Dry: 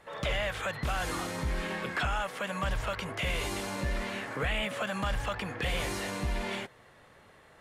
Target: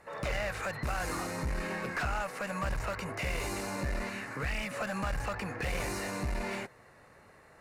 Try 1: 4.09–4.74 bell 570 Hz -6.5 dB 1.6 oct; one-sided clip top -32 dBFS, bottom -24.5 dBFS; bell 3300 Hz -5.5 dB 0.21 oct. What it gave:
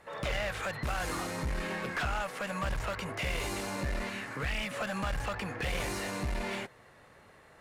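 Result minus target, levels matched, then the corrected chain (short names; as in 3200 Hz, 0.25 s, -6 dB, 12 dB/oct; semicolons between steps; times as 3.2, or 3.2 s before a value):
4000 Hz band +3.0 dB
4.09–4.74 bell 570 Hz -6.5 dB 1.6 oct; one-sided clip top -32 dBFS, bottom -24.5 dBFS; bell 3300 Hz -17.5 dB 0.21 oct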